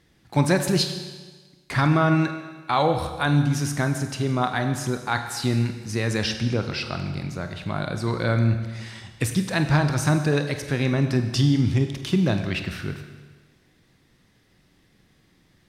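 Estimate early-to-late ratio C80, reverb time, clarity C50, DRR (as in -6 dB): 9.5 dB, 1.4 s, 8.5 dB, 6.5 dB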